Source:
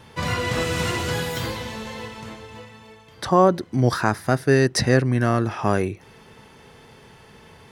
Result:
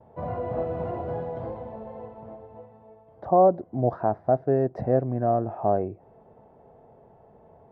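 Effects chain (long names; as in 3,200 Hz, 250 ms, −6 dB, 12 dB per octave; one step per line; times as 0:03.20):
low-pass with resonance 680 Hz, resonance Q 4.9
noise gate with hold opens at −44 dBFS
level −8.5 dB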